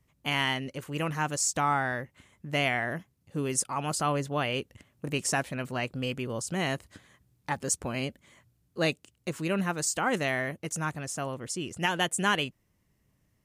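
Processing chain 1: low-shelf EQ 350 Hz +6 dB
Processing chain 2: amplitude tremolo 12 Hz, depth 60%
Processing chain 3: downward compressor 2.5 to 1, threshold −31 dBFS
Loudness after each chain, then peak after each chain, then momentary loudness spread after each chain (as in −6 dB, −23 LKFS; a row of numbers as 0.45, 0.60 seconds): −28.5, −33.0, −34.5 LKFS; −11.5, −13.5, −18.5 dBFS; 9, 10, 9 LU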